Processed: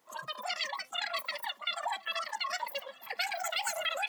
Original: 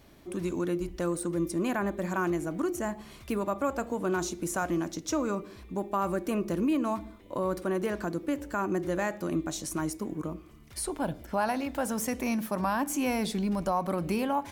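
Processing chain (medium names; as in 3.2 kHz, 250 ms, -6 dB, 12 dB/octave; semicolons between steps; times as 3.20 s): wide varispeed 3.55×; Bessel high-pass 390 Hz, order 2; formant shift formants -3 st; spectral noise reduction 12 dB; bit crusher 12-bit; shuffle delay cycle 1153 ms, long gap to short 3:1, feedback 60%, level -24 dB; trim -2 dB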